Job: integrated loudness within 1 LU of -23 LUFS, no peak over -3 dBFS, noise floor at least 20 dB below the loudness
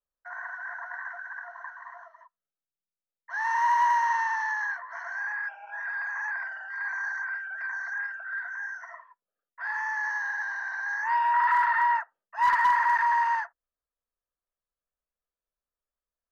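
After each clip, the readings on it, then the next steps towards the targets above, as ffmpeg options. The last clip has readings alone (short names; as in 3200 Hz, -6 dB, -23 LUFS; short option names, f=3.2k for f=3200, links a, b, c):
loudness -27.5 LUFS; peak -16.0 dBFS; loudness target -23.0 LUFS
-> -af "volume=4.5dB"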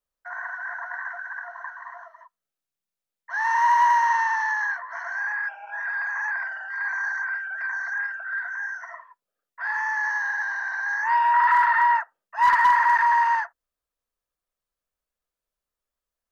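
loudness -23.0 LUFS; peak -11.5 dBFS; noise floor -89 dBFS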